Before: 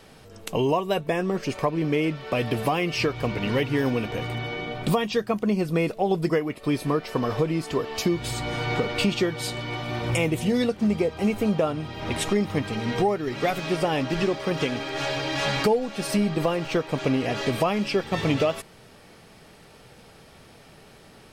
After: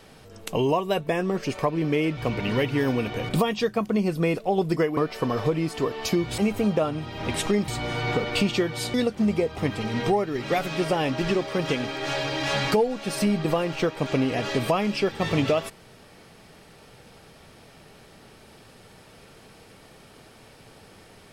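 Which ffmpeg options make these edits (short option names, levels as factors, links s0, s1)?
-filter_complex "[0:a]asplit=8[s0][s1][s2][s3][s4][s5][s6][s7];[s0]atrim=end=2.172[s8];[s1]atrim=start=3.148:end=4.272[s9];[s2]atrim=start=4.818:end=6.502[s10];[s3]atrim=start=6.898:end=8.312[s11];[s4]atrim=start=11.198:end=12.502[s12];[s5]atrim=start=8.308:end=9.572[s13];[s6]atrim=start=10.558:end=11.202[s14];[s7]atrim=start=12.498[s15];[s8][s9]acrossfade=d=0.004:c1=hsin:c2=hsin[s16];[s16][s10]acrossfade=d=0.004:c1=hsin:c2=hsin[s17];[s17][s11]acrossfade=d=0.004:c1=hsin:c2=hsin[s18];[s18][s12]acrossfade=d=0.004:c1=hsin:c2=hsin[s19];[s19][s13]acrossfade=d=0.004:c1=hsin:c2=hsin[s20];[s20][s14]acrossfade=d=0.004:c1=hsin:c2=hsin[s21];[s21][s15]acrossfade=d=0.004:c1=hsin:c2=hsin"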